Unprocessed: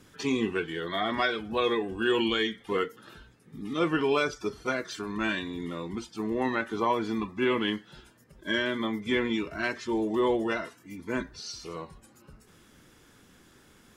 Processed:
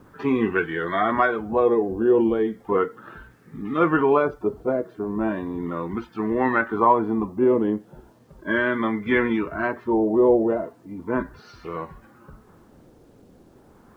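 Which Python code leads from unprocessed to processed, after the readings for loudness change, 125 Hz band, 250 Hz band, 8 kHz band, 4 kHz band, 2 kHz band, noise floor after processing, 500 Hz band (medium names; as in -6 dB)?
+7.0 dB, +6.0 dB, +7.0 dB, under -15 dB, -11.0 dB, +4.0 dB, -54 dBFS, +8.0 dB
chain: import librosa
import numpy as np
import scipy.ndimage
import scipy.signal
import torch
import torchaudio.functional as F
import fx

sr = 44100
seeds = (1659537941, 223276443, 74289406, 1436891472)

y = fx.filter_lfo_lowpass(x, sr, shape='sine', hz=0.36, low_hz=600.0, high_hz=1700.0, q=1.6)
y = fx.quant_dither(y, sr, seeds[0], bits=12, dither='none')
y = F.gain(torch.from_numpy(y), 6.0).numpy()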